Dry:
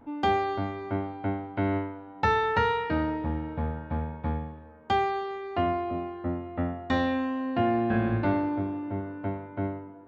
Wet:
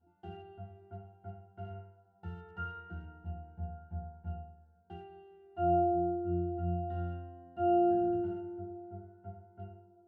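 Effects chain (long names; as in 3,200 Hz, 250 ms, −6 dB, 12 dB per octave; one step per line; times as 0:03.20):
in parallel at −9.5 dB: wrap-around overflow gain 20 dB
on the sum: resonances in every octave F, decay 0.53 s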